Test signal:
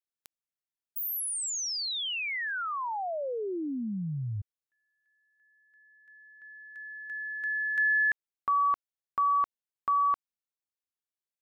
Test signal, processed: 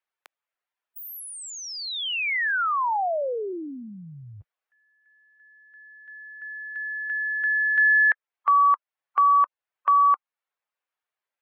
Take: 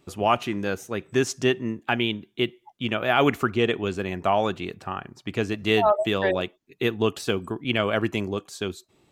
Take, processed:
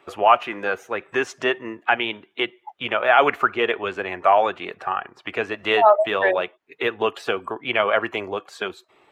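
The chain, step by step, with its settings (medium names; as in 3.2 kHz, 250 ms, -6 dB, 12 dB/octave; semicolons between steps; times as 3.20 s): coarse spectral quantiser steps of 15 dB; three-band isolator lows -23 dB, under 490 Hz, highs -19 dB, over 2.7 kHz; in parallel at +0.5 dB: compression, threshold -44 dBFS; on the sum: trim +7.5 dB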